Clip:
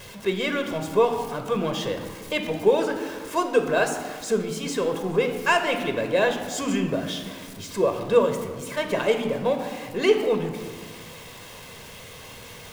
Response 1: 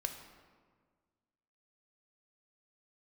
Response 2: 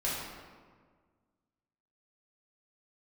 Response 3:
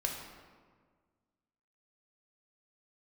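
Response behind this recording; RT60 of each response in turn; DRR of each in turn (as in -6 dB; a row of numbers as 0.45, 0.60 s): 1; 1.6, 1.6, 1.6 s; 5.5, -7.5, 0.5 dB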